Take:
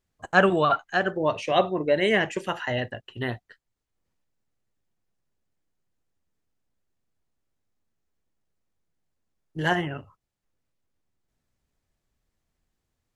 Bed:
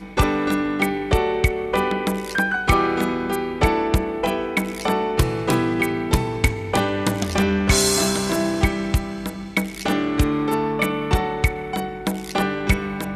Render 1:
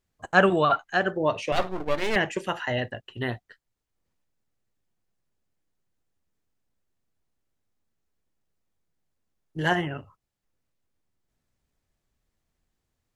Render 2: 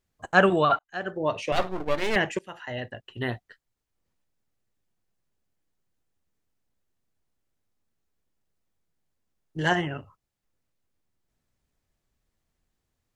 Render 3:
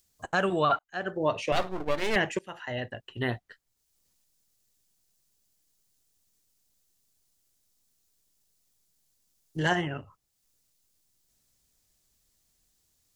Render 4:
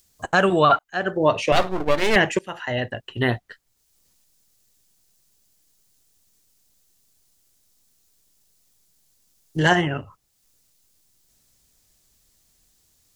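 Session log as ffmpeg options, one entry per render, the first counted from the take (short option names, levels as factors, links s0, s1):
-filter_complex "[0:a]asettb=1/sr,asplit=3[s0][s1][s2];[s0]atrim=end=1.524[s3];[s1]atrim=start=1.52:end=2.16,asetpts=PTS-STARTPTS,afade=t=in:d=0.004:c=qsin,afade=t=out:st=0.636:d=0.004:c=qsin,aeval=exprs='max(val(0),0)':c=same[s4];[s2]atrim=start=2.156[s5];[s3][s4]acrossfade=d=0.004:c1=hsin:c2=qsin[s6];[s6][s5]acrossfade=d=0.004:c1=qsin:c2=hsin"
-filter_complex "[0:a]asettb=1/sr,asplit=3[s0][s1][s2];[s0]atrim=end=9.584[s3];[s1]atrim=start=9.58:end=9.98,asetpts=PTS-STARTPTS,afade=t=in:d=0.004:c=qsin,afade=t=out:st=0.396:d=0.004:c=qsin,lowpass=f=7200:t=q:w=1.5[s4];[s2]atrim=start=9.976[s5];[s3][s4]acrossfade=d=0.004:c1=hsin:c2=qsin[s6];[s6][s5]acrossfade=d=0.004:c1=qsin:c2=hsin,asplit=3[s7][s8][s9];[s7]atrim=end=0.79,asetpts=PTS-STARTPTS,afade=t=out:st=0.786:d=0.004:c=hsin[s10];[s8]atrim=start=0.79:end=2.39,asetpts=PTS-STARTPTS,afade=t=in:d=0.85:c=qsin,afade=t=out:st=1.596:d=0.004:c=hsin:silence=0.125893[s11];[s9]atrim=start=2.39,asetpts=PTS-STARTPTS,afade=t=in:d=0.88:silence=0.125893[s12];[s10][s11][s12]concat=n=3:v=0:a=1"
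-filter_complex "[0:a]acrossover=split=4100[s0][s1];[s0]alimiter=limit=0.211:level=0:latency=1:release=450[s2];[s1]acompressor=mode=upward:threshold=0.00126:ratio=2.5[s3];[s2][s3]amix=inputs=2:normalize=0"
-af "volume=2.66"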